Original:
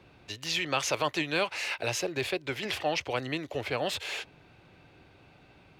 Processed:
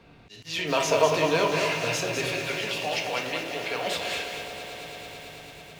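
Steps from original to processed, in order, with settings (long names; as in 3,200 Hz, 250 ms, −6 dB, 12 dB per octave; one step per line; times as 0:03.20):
in parallel at −0.5 dB: brickwall limiter −26 dBFS, peak gain reduction 10 dB
0:02.32–0:03.87: on the sum: meter weighting curve A
on a send: echo that builds up and dies away 110 ms, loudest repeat 5, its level −16 dB
on the sum: rectangular room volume 670 cubic metres, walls furnished, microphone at 1.7 metres
volume swells 146 ms
0:00.59–0:01.73: hollow resonant body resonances 450/630/970 Hz, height 12 dB
0:02.70–0:02.92: time-frequency box erased 1,200–2,400 Hz
feedback echo at a low word length 202 ms, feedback 35%, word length 7 bits, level −5 dB
level −4 dB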